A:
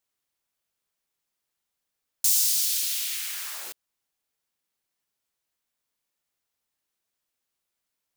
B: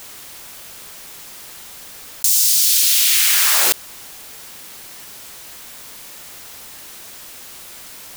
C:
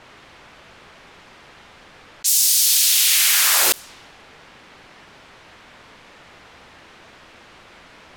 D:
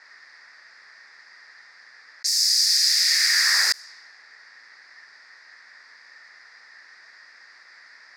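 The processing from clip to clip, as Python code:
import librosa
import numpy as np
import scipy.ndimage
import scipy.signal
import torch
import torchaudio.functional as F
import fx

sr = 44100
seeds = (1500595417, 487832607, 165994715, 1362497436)

y1 = fx.env_flatten(x, sr, amount_pct=100)
y1 = F.gain(torch.from_numpy(y1), 5.5).numpy()
y2 = fx.env_lowpass(y1, sr, base_hz=2000.0, full_db=-13.0)
y3 = fx.double_bandpass(y2, sr, hz=3000.0, octaves=1.4)
y3 = F.gain(torch.from_numpy(y3), 7.0).numpy()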